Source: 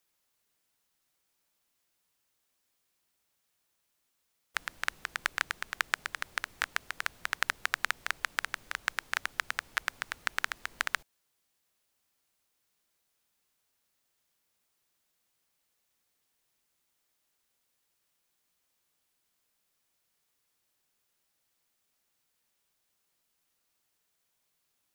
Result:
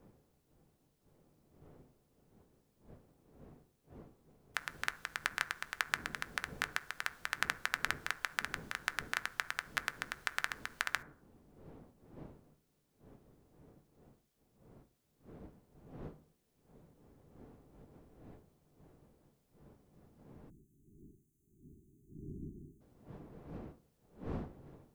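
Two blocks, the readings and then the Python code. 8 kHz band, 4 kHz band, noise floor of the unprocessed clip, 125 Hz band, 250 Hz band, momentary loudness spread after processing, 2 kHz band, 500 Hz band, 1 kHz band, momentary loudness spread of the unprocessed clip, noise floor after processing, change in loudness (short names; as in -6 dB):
-4.5 dB, -4.5 dB, -78 dBFS, +12.0 dB, +11.0 dB, 22 LU, -4.0 dB, +1.0 dB, -4.0 dB, 5 LU, -76 dBFS, -5.0 dB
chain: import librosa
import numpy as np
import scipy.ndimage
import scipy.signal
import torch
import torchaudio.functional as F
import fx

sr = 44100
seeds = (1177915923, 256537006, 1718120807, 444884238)

y = fx.dmg_wind(x, sr, seeds[0], corner_hz=350.0, level_db=-51.0)
y = fx.rev_fdn(y, sr, rt60_s=0.54, lf_ratio=1.0, hf_ratio=0.35, size_ms=40.0, drr_db=11.5)
y = fx.spec_erase(y, sr, start_s=20.5, length_s=2.31, low_hz=410.0, high_hz=6000.0)
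y = y * librosa.db_to_amplitude(-4.5)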